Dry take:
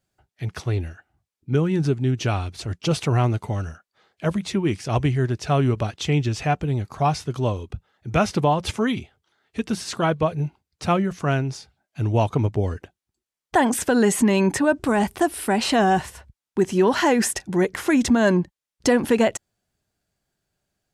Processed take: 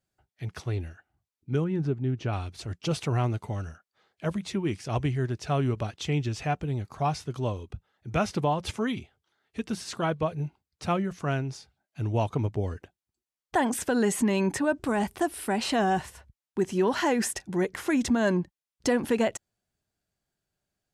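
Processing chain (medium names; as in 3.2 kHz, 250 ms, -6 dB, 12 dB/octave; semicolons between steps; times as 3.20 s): 1.64–2.33 s: low-pass 1.5 kHz 6 dB/octave; trim -6.5 dB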